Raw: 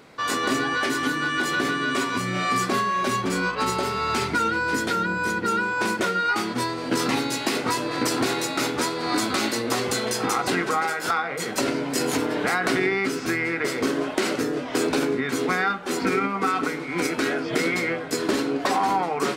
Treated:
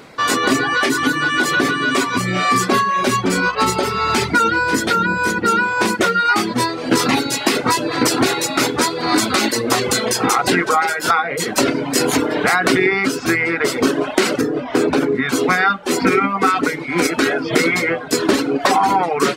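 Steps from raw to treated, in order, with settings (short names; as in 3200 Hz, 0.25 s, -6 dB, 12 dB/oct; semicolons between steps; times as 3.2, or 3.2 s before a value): reverb removal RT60 0.78 s; 14.41–15.15 high shelf 2800 Hz -10.5 dB; gain +9 dB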